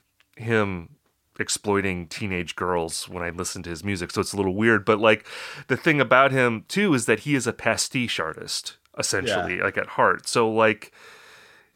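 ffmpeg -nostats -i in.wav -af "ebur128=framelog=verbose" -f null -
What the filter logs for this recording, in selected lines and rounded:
Integrated loudness:
  I:         -23.0 LUFS
  Threshold: -33.6 LUFS
Loudness range:
  LRA:         6.2 LU
  Threshold: -43.2 LUFS
  LRA low:   -26.9 LUFS
  LRA high:  -20.7 LUFS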